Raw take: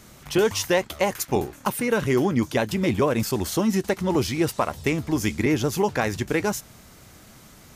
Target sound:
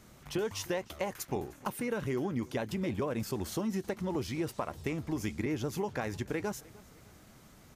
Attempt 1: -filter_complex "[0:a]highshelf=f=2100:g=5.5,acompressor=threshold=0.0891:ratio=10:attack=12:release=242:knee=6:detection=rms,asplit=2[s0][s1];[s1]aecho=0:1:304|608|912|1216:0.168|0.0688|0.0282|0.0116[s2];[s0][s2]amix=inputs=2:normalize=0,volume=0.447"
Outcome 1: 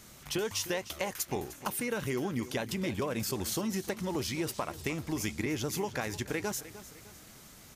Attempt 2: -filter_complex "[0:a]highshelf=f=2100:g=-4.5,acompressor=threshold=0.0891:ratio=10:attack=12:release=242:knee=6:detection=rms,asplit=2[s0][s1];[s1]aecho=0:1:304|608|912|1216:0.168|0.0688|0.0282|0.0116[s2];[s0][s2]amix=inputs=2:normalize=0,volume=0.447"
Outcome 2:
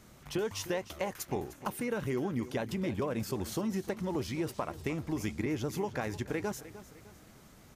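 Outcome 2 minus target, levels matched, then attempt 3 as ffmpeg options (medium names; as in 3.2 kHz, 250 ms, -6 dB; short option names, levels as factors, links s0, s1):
echo-to-direct +7.5 dB
-filter_complex "[0:a]highshelf=f=2100:g=-4.5,acompressor=threshold=0.0891:ratio=10:attack=12:release=242:knee=6:detection=rms,asplit=2[s0][s1];[s1]aecho=0:1:304|608|912:0.0708|0.029|0.0119[s2];[s0][s2]amix=inputs=2:normalize=0,volume=0.447"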